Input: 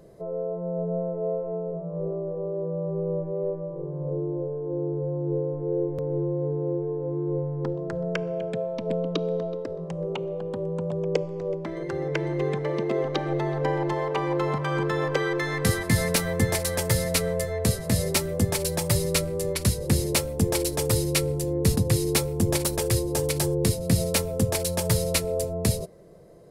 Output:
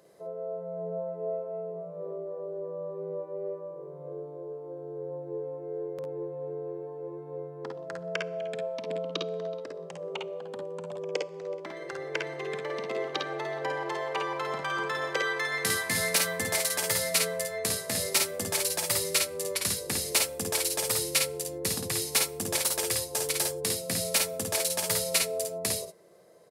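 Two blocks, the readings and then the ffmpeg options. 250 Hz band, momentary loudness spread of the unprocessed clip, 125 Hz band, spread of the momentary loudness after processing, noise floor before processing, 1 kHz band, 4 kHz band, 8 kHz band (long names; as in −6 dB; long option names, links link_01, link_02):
−13.0 dB, 8 LU, −17.5 dB, 13 LU, −34 dBFS, −2.5 dB, +1.5 dB, +1.5 dB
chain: -filter_complex "[0:a]highpass=frequency=1100:poles=1,asplit=2[link_01][link_02];[link_02]aecho=0:1:53|64:0.631|0.282[link_03];[link_01][link_03]amix=inputs=2:normalize=0"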